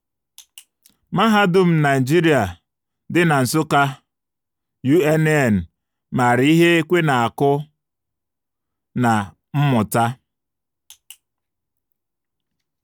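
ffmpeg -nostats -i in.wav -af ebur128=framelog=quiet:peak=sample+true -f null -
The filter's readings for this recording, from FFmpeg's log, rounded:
Integrated loudness:
  I:         -17.5 LUFS
  Threshold: -28.6 LUFS
Loudness range:
  LRA:         5.8 LU
  Threshold: -39.5 LUFS
  LRA low:   -23.2 LUFS
  LRA high:  -17.4 LUFS
Sample peak:
  Peak:       -4.2 dBFS
True peak:
  Peak:       -4.1 dBFS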